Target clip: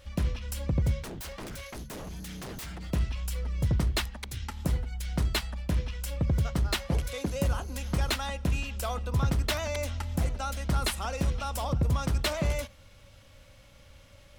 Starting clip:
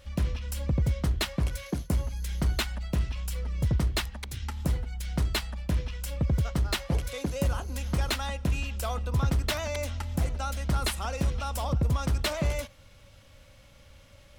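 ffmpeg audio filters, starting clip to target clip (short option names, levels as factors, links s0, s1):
-filter_complex "[0:a]bandreject=f=71.59:t=h:w=4,bandreject=f=143.18:t=h:w=4,bandreject=f=214.77:t=h:w=4,asettb=1/sr,asplit=3[s0][s1][s2];[s0]atrim=end=1.034[s3];[s1]atrim=start=1.03:end=2.92,asetpts=PTS-STARTPTS,afade=t=in:d=0.004:c=qsin,afade=t=out:st=1.886:d=0.004:c=qsin,aeval=exprs='0.0188*(abs(mod(val(0)/0.0188+3,4)-2)-1)':c=same[s4];[s2]atrim=start=2.916[s5];[s3][s4]acrossfade=d=0.004:c1=hsin:c2=qsin[s6];[s6][s5]acrossfade=d=0.004:c1=qsin:c2=hsin"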